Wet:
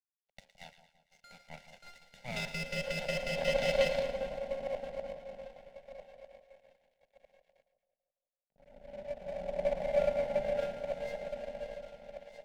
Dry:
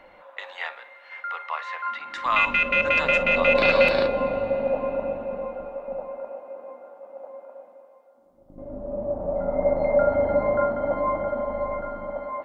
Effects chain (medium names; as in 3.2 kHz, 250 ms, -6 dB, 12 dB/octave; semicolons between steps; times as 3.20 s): comb filter that takes the minimum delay 1.4 ms; low-pass 2.5 kHz 6 dB/octave; power-law waveshaper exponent 1.4; crossover distortion -55 dBFS; static phaser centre 320 Hz, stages 6; on a send: two-band feedback delay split 990 Hz, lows 167 ms, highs 113 ms, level -12 dB; on the sum: trim -4.5 dB